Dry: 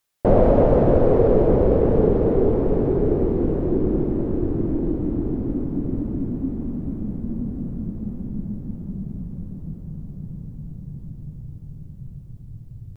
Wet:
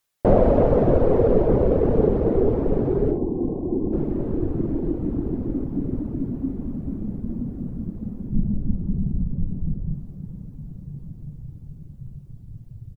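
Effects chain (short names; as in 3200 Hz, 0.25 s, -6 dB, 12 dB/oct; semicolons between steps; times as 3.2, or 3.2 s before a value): reverb removal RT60 0.7 s; 3.11–3.93 rippled Chebyshev low-pass 1100 Hz, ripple 6 dB; 8.32–9.94 tilt -2.5 dB/oct; on a send: early reflections 55 ms -11 dB, 70 ms -14.5 dB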